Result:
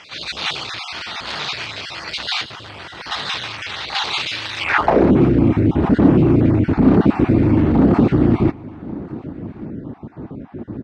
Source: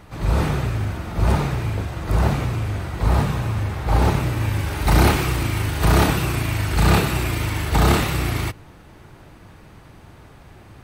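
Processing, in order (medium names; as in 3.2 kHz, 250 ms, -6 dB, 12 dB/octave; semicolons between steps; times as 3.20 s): random holes in the spectrogram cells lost 27%; 2.43–3.06 s: peaking EQ 4.4 kHz -10.5 dB 2.9 oct; in parallel at -2 dB: compressor with a negative ratio -23 dBFS, ratio -0.5; on the sum: sine folder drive 10 dB, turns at -3 dBFS; bit crusher 8-bit; distance through air 96 m; on a send: delay 1141 ms -21.5 dB; on the sum: band-pass sweep 4 kHz -> 260 Hz, 4.58–5.08 s; trim +4 dB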